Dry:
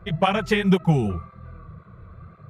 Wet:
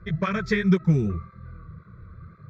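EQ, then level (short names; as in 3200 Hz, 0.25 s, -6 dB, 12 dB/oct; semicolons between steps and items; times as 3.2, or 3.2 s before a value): LPF 7800 Hz 12 dB/oct; fixed phaser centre 2900 Hz, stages 6; 0.0 dB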